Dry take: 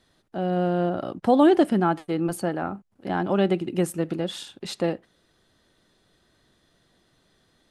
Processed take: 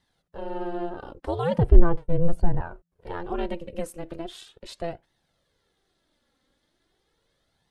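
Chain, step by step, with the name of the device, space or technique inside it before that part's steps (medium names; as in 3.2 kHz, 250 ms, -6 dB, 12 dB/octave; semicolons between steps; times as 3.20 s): alien voice (ring modulator 170 Hz; flange 0.39 Hz, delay 1 ms, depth 2.9 ms, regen +32%); 1.58–2.61 s: tilt EQ -4.5 dB/octave; trim -1 dB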